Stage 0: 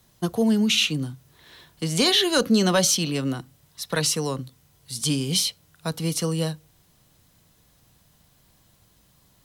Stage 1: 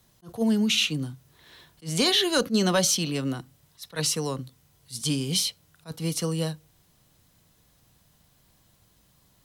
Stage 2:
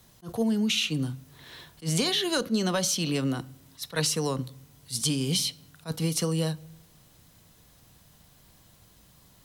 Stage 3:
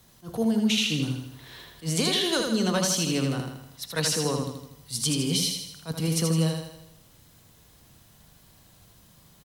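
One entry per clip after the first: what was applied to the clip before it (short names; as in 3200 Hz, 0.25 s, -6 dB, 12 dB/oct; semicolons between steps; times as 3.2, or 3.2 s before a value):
attack slew limiter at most 320 dB/s; gain -2.5 dB
compressor 12:1, threshold -28 dBFS, peak gain reduction 10.5 dB; on a send at -21 dB: reverb RT60 0.90 s, pre-delay 4 ms; on the sum: gain +5 dB
feedback echo 80 ms, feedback 51%, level -4.5 dB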